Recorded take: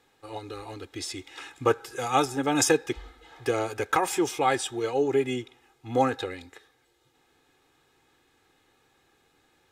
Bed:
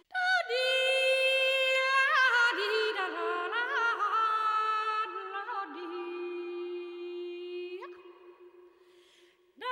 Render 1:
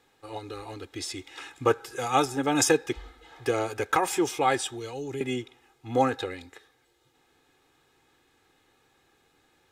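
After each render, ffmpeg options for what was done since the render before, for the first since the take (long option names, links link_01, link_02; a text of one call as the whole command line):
ffmpeg -i in.wav -filter_complex "[0:a]asettb=1/sr,asplit=3[link_01][link_02][link_03];[link_01]atrim=end=4.694[link_04];[link_02]atrim=start=4.69:end=5.21,asetpts=PTS-STARTPTS,afade=type=in:duration=0.004:curve=qsin,afade=type=out:start_time=0.516:duration=0.004:curve=qsin,acrossover=split=200|3000[link_05][link_06][link_07];[link_06]acompressor=threshold=-37dB:ratio=4:attack=3.2:release=140:knee=2.83:detection=peak[link_08];[link_05][link_08][link_07]amix=inputs=3:normalize=0[link_09];[link_03]atrim=start=5.206[link_10];[link_04][link_09]acrossfade=duration=0.004:curve1=hsin:curve2=qsin[link_11];[link_11][link_10]acrossfade=duration=0.004:curve1=qsin:curve2=hsin" out.wav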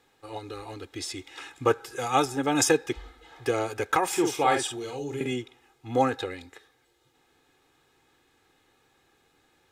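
ffmpeg -i in.wav -filter_complex "[0:a]asettb=1/sr,asplit=3[link_01][link_02][link_03];[link_01]atrim=end=4.084[link_04];[link_02]atrim=start=4.08:end=5.32,asetpts=PTS-STARTPTS,afade=type=in:duration=0.004:curve=qsin,afade=type=out:start_time=1.236:duration=0.004:curve=qsin,asplit=2[link_05][link_06];[link_06]adelay=48,volume=-5dB[link_07];[link_05][link_07]amix=inputs=2:normalize=0,atrim=end_sample=54684[link_08];[link_03]atrim=start=5.316[link_09];[link_04][link_08]acrossfade=duration=0.004:curve1=hsin:curve2=qsin[link_10];[link_10][link_09]acrossfade=duration=0.004:curve1=qsin:curve2=hsin" out.wav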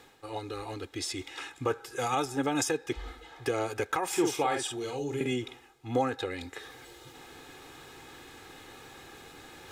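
ffmpeg -i in.wav -af "alimiter=limit=-17.5dB:level=0:latency=1:release=316,areverse,acompressor=mode=upward:threshold=-34dB:ratio=2.5,areverse" out.wav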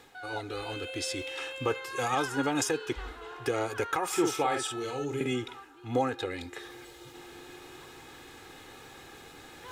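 ffmpeg -i in.wav -i bed.wav -filter_complex "[1:a]volume=-13dB[link_01];[0:a][link_01]amix=inputs=2:normalize=0" out.wav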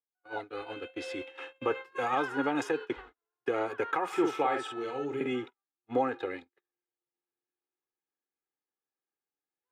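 ffmpeg -i in.wav -filter_complex "[0:a]agate=range=-49dB:threshold=-36dB:ratio=16:detection=peak,acrossover=split=180 3000:gain=0.178 1 0.126[link_01][link_02][link_03];[link_01][link_02][link_03]amix=inputs=3:normalize=0" out.wav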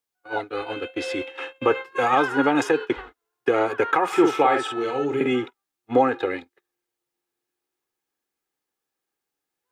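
ffmpeg -i in.wav -af "volume=10dB" out.wav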